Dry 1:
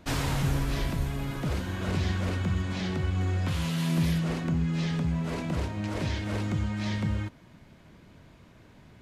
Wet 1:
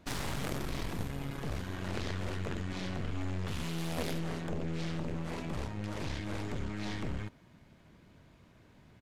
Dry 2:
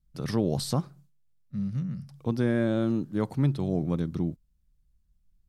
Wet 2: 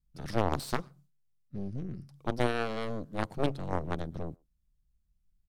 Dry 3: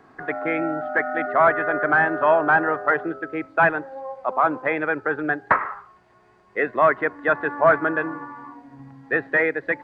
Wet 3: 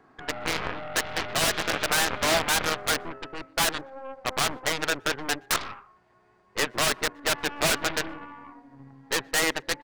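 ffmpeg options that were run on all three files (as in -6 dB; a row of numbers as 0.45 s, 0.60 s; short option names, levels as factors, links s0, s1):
-filter_complex "[0:a]aeval=exprs='0.178*(abs(mod(val(0)/0.178+3,4)-2)-1)':c=same,aeval=exprs='0.188*(cos(1*acos(clip(val(0)/0.188,-1,1)))-cos(1*PI/2))+0.0944*(cos(3*acos(clip(val(0)/0.188,-1,1)))-cos(3*PI/2))+0.0106*(cos(8*acos(clip(val(0)/0.188,-1,1)))-cos(8*PI/2))':c=same,asplit=2[s0][s1];[s1]adelay=120,highpass=300,lowpass=3400,asoftclip=type=hard:threshold=0.0631,volume=0.0355[s2];[s0][s2]amix=inputs=2:normalize=0"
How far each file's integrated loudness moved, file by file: -8.5 LU, -6.0 LU, -5.0 LU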